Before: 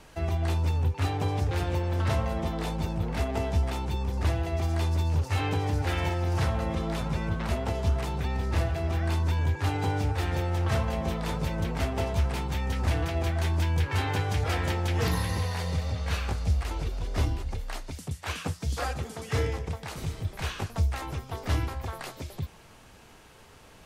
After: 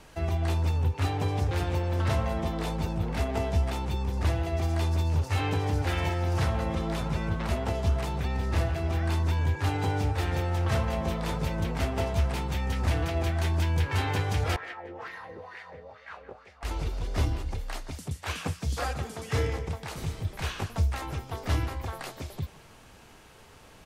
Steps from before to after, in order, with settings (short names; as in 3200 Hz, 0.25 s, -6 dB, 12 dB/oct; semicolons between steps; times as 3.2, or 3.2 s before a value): 14.56–16.63 wah 2.2 Hz 410–2000 Hz, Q 3.6; speakerphone echo 0.17 s, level -13 dB